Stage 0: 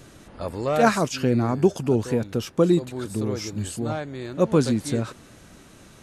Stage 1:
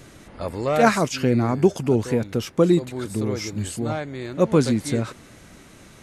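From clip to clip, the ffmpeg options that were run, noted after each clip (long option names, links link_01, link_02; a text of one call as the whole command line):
ffmpeg -i in.wav -af "equalizer=frequency=2100:width_type=o:width=0.22:gain=6,volume=1.5dB" out.wav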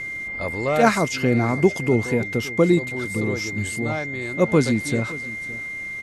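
ffmpeg -i in.wav -af "aeval=exprs='val(0)+0.0398*sin(2*PI*2100*n/s)':channel_layout=same,aecho=1:1:564:0.119" out.wav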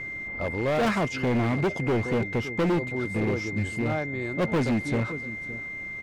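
ffmpeg -i in.wav -af "lowpass=frequency=1500:poles=1,asoftclip=type=hard:threshold=-21dB" out.wav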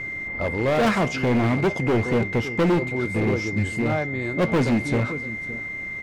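ffmpeg -i in.wav -af "flanger=delay=9:depth=9.3:regen=-80:speed=0.58:shape=triangular,volume=8.5dB" out.wav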